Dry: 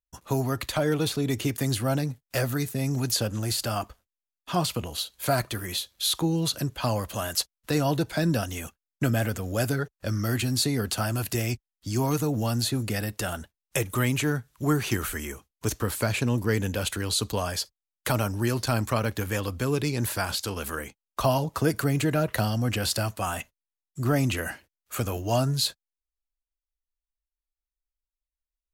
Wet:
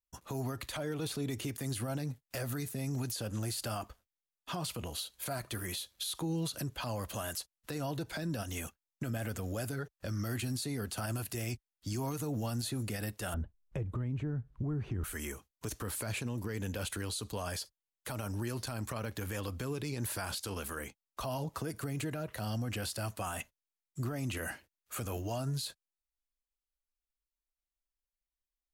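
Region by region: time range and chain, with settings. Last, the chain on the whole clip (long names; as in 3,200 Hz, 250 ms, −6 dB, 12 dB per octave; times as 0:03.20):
0:13.34–0:15.04: low-pass filter 2,700 Hz 6 dB per octave + spectral tilt −4.5 dB per octave
whole clip: dynamic equaliser 9,700 Hz, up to +5 dB, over −47 dBFS, Q 2.8; downward compressor, threshold −25 dBFS; brickwall limiter −23.5 dBFS; level −4.5 dB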